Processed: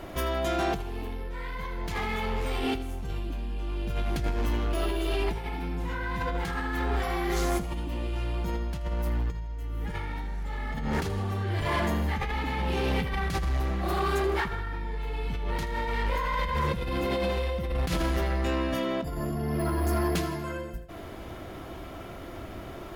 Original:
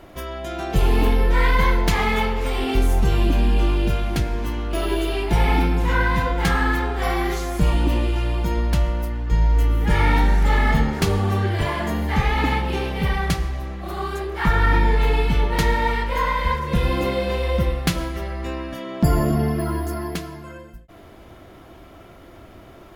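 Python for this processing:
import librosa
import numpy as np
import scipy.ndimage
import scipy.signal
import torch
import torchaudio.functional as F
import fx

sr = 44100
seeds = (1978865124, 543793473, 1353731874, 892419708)

p1 = fx.over_compress(x, sr, threshold_db=-26.0, ratio=-1.0)
p2 = 10.0 ** (-19.0 / 20.0) * np.tanh(p1 / 10.0 ** (-19.0 / 20.0))
p3 = p2 + fx.echo_feedback(p2, sr, ms=80, feedback_pct=56, wet_db=-16, dry=0)
y = p3 * 10.0 ** (-2.0 / 20.0)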